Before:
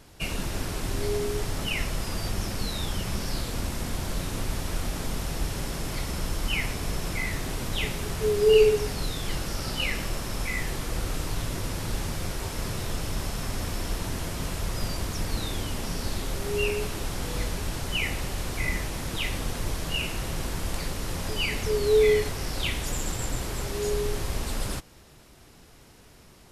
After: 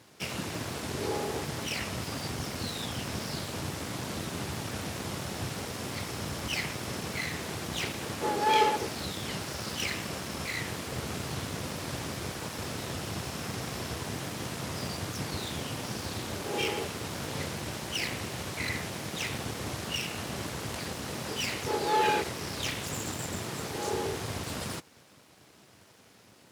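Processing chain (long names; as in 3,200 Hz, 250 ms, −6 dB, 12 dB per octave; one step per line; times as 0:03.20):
high-shelf EQ 12,000 Hz −11 dB
full-wave rectification
high-pass filter 86 Hz 24 dB per octave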